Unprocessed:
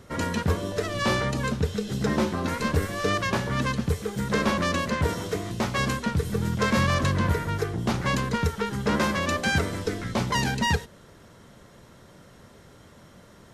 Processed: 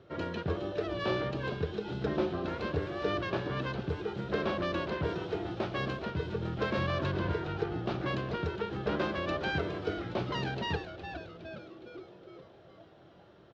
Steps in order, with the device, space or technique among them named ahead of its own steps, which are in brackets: frequency-shifting delay pedal into a guitar cabinet (frequency-shifting echo 413 ms, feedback 56%, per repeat -150 Hz, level -9.5 dB; cabinet simulation 92–3900 Hz, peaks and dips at 230 Hz -9 dB, 350 Hz +8 dB, 650 Hz +4 dB, 980 Hz -5 dB, 2 kHz -7 dB); trim -7 dB

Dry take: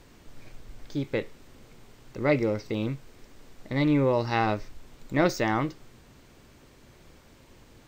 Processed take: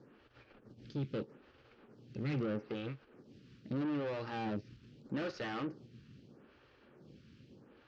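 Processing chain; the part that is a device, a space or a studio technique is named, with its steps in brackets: vibe pedal into a guitar amplifier (lamp-driven phase shifter 0.79 Hz; valve stage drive 36 dB, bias 0.65; cabinet simulation 96–4200 Hz, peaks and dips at 130 Hz +5 dB, 210 Hz +4 dB, 680 Hz -8 dB, 990 Hz -8 dB, 2.1 kHz -8 dB, 3.7 kHz -6 dB); trim +2.5 dB

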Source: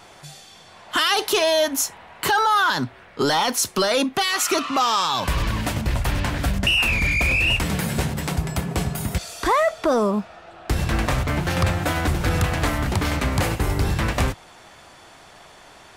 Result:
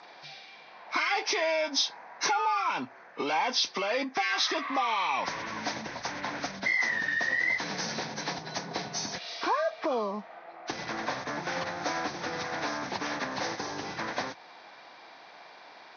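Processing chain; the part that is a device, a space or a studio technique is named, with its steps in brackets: hearing aid with frequency lowering (knee-point frequency compression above 1.1 kHz 1.5:1; compression 3:1, threshold -23 dBFS, peak gain reduction 6.5 dB; cabinet simulation 380–6600 Hz, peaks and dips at 390 Hz -6 dB, 590 Hz -4 dB, 1.3 kHz -6 dB, 2.9 kHz -8 dB, 5.9 kHz +4 dB); peaking EQ 71 Hz -8.5 dB 0.64 oct

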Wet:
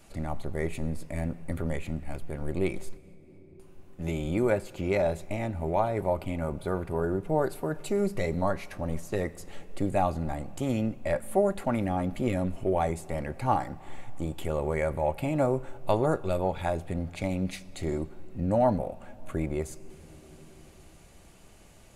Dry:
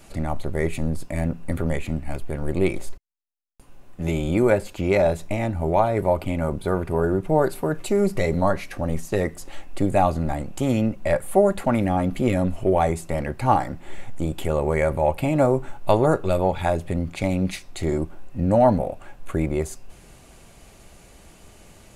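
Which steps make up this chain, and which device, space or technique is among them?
compressed reverb return (on a send at -8 dB: reverberation RT60 2.5 s, pre-delay 76 ms + compression, threshold -32 dBFS, peak gain reduction 17.5 dB); on the sum: trim -7 dB

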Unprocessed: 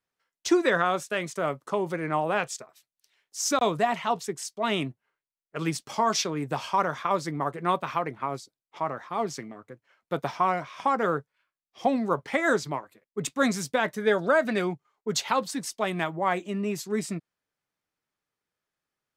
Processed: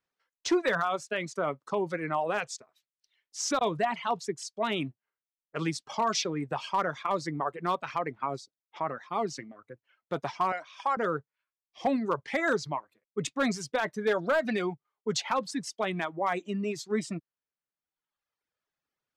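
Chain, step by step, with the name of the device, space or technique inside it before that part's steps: low-pass 6.4 kHz 12 dB/octave; reverb removal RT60 1.2 s; 10.52–10.97 s: high-pass 590 Hz 12 dB/octave; bass shelf 140 Hz -2.5 dB; clipper into limiter (hard clipper -16 dBFS, distortion -21 dB; peak limiter -19 dBFS, peak gain reduction 3 dB)

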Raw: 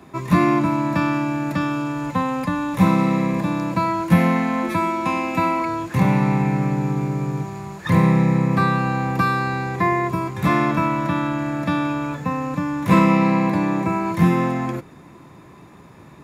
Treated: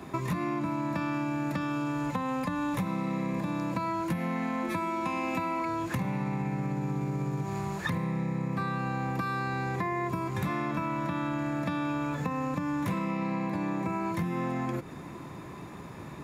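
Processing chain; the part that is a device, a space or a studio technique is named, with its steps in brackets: serial compression, peaks first (compression, threshold -27 dBFS, peak gain reduction 16.5 dB; compression 2.5:1, threshold -31 dBFS, peak gain reduction 5.5 dB); trim +2 dB

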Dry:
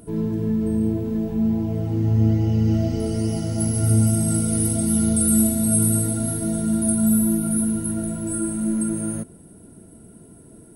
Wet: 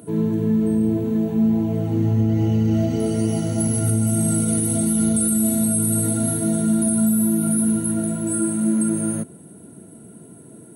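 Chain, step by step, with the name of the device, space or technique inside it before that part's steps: PA system with an anti-feedback notch (high-pass 110 Hz 24 dB/octave; Butterworth band-stop 5.1 kHz, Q 5.3; peak limiter -14.5 dBFS, peak gain reduction 7.5 dB); trim +3.5 dB

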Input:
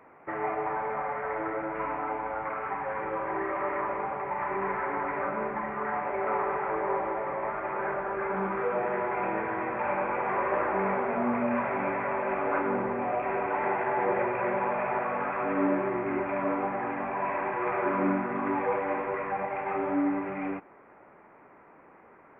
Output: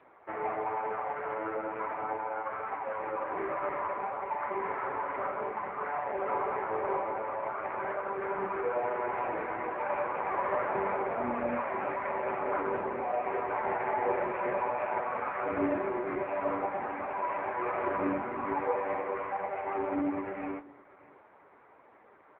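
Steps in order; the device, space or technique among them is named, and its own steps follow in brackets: satellite phone (band-pass 310–3000 Hz; delay 614 ms -23 dB; AMR-NB 5.9 kbps 8 kHz)

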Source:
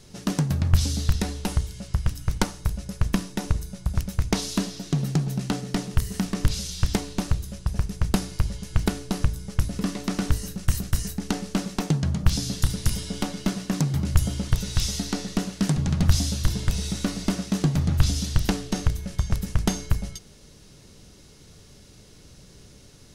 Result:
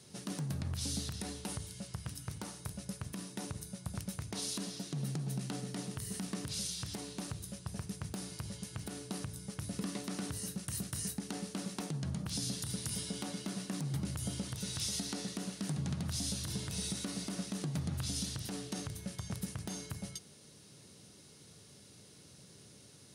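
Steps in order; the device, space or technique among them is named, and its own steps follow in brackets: broadcast voice chain (high-pass 96 Hz 24 dB/octave; de-esser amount 40%; compression, threshold -24 dBFS, peak gain reduction 8 dB; peaking EQ 4.1 kHz +2 dB; peak limiter -20 dBFS, peak gain reduction 11 dB); peaking EQ 9.4 kHz +11 dB 0.24 oct; trim -7 dB

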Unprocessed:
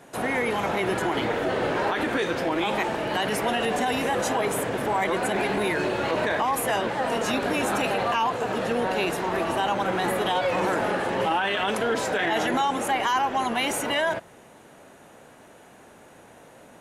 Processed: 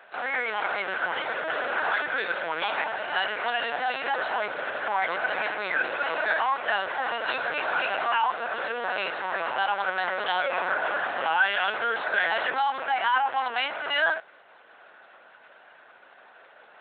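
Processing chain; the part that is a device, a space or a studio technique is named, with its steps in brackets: talking toy (LPC vocoder at 8 kHz pitch kept; high-pass 660 Hz 12 dB/octave; peaking EQ 1.5 kHz +9 dB 0.26 oct)

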